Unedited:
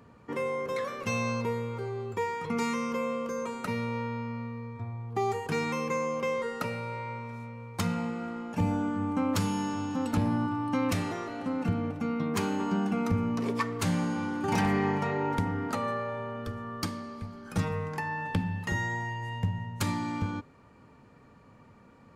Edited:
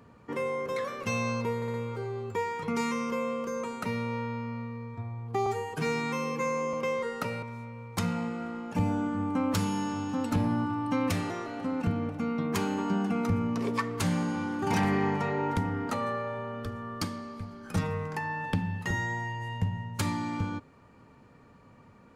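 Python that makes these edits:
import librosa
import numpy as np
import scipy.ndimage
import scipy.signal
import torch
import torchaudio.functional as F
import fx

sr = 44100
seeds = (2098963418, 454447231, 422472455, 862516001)

y = fx.edit(x, sr, fx.stutter(start_s=1.56, slice_s=0.06, count=4),
    fx.stretch_span(start_s=5.28, length_s=0.85, factor=1.5),
    fx.cut(start_s=6.82, length_s=0.42), tone=tone)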